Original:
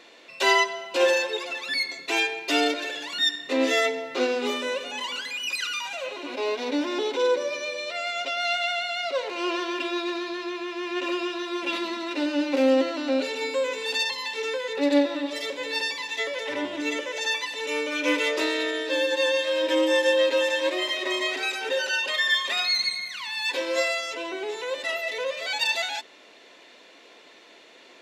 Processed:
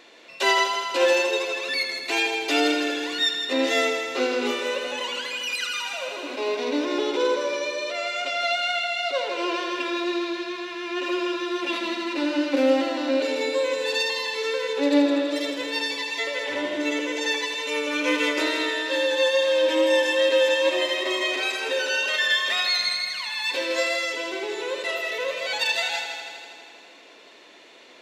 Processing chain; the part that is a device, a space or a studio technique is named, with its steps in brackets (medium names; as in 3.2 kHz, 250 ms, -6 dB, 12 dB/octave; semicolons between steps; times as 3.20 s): multi-head tape echo (multi-head delay 81 ms, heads first and second, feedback 67%, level -10 dB; wow and flutter 14 cents)